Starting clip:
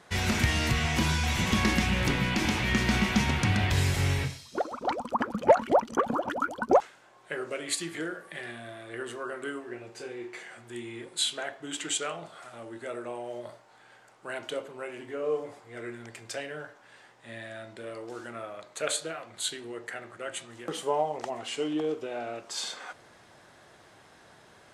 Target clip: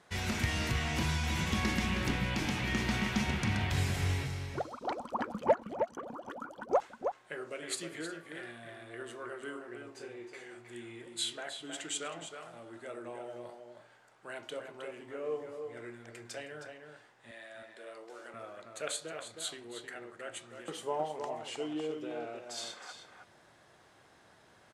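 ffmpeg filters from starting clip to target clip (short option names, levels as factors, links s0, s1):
-filter_complex "[0:a]asplit=3[s0][s1][s2];[s0]afade=t=out:st=5.52:d=0.02[s3];[s1]acompressor=threshold=0.0158:ratio=3,afade=t=in:st=5.52:d=0.02,afade=t=out:st=6.72:d=0.02[s4];[s2]afade=t=in:st=6.72:d=0.02[s5];[s3][s4][s5]amix=inputs=3:normalize=0,asettb=1/sr,asplit=3[s6][s7][s8];[s6]atrim=end=17.314[s9];[s7]atrim=start=17.31:end=18.34,asetpts=PTS-STARTPTS,afade=t=in:d=0.004:c=qsin,afade=t=out:st=1.026:d=0.004:c=qsin,highpass=410[s10];[s8]atrim=start=18.336[s11];[s9][s10]acrossfade=d=0.004:c1=hsin:c2=qsin[s12];[s12][s11]acrossfade=d=0.004:c1=qsin:c2=hsin,asplit=2[s13][s14];[s14]adelay=314.9,volume=0.501,highshelf=f=4000:g=-7.08[s15];[s13][s15]amix=inputs=2:normalize=0,volume=0.447"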